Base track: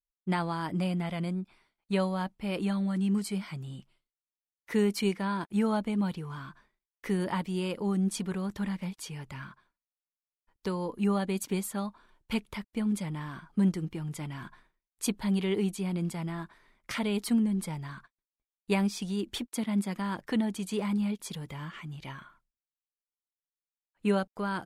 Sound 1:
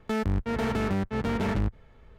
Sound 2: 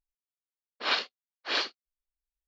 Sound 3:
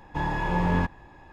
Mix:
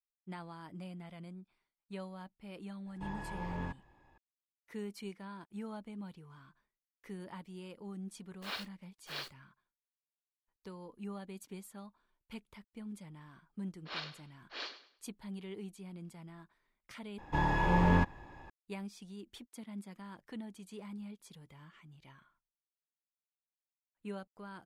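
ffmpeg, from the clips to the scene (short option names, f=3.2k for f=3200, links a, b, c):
-filter_complex "[3:a]asplit=2[a][b];[2:a]asplit=2[c][d];[0:a]volume=-16dB[e];[c]acrusher=bits=7:dc=4:mix=0:aa=0.000001[f];[d]aecho=1:1:103|206|309:0.237|0.0711|0.0213[g];[e]asplit=2[h][i];[h]atrim=end=17.184[j];[b]atrim=end=1.32,asetpts=PTS-STARTPTS,volume=-2.5dB[k];[i]atrim=start=18.496[l];[a]atrim=end=1.32,asetpts=PTS-STARTPTS,volume=-15.5dB,afade=t=in:d=0.004:c=hsin,afade=t=out:st=1.316:d=0.004:c=hsin,adelay=2860[m];[f]atrim=end=2.47,asetpts=PTS-STARTPTS,volume=-13.5dB,afade=t=in:d=0.004:c=hsin,afade=t=out:st=2.466:d=0.004:c=hsin,adelay=7610[n];[g]atrim=end=2.47,asetpts=PTS-STARTPTS,volume=-14dB,afade=t=in:d=0.004:c=hsin,afade=t=out:st=2.466:d=0.004:c=hsin,adelay=13050[o];[j][k]acrossfade=d=0.004:c1=hsin:c2=hsin[p];[p][l]acrossfade=d=0.004:c1=hsin:c2=hsin[q];[q][m][n][o]amix=inputs=4:normalize=0"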